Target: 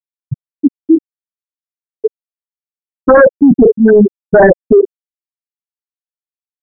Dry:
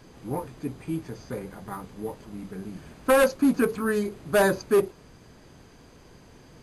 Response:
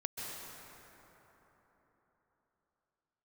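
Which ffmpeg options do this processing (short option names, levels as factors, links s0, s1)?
-filter_complex "[0:a]afftfilt=real='re*gte(hypot(re,im),0.355)':imag='im*gte(hypot(re,im),0.355)':win_size=1024:overlap=0.75,acrossover=split=2700[s0][s1];[s1]acompressor=threshold=0.00126:ratio=4:attack=1:release=60[s2];[s0][s2]amix=inputs=2:normalize=0,apsyclip=22.4,volume=0.841"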